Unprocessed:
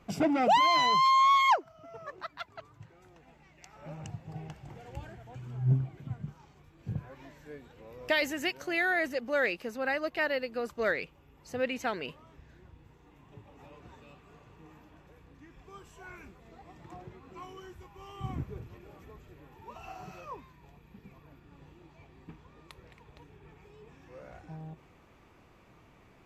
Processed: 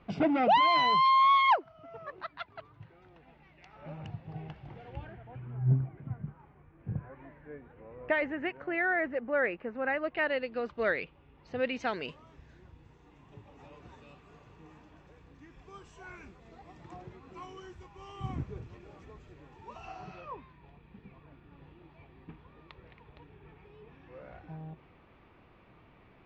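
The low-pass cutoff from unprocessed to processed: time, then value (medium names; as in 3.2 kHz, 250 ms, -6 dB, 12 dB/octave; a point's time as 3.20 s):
low-pass 24 dB/octave
4.80 s 3.9 kHz
5.63 s 2.1 kHz
9.68 s 2.1 kHz
10.49 s 3.8 kHz
11.53 s 3.8 kHz
12.07 s 7.2 kHz
19.69 s 7.2 kHz
20.34 s 3.7 kHz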